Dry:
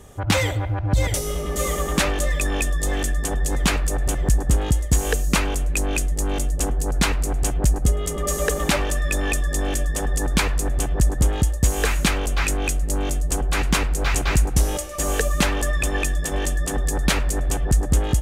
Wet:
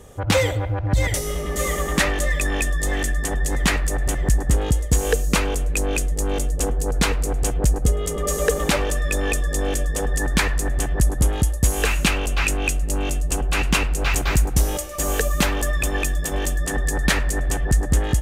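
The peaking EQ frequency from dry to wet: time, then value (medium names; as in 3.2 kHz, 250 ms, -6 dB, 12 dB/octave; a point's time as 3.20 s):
peaking EQ +8.5 dB 0.21 oct
500 Hz
from 0.87 s 1.9 kHz
from 4.54 s 470 Hz
from 10.14 s 1.8 kHz
from 11.01 s 11 kHz
from 11.82 s 2.7 kHz
from 14.14 s 14 kHz
from 16.66 s 1.8 kHz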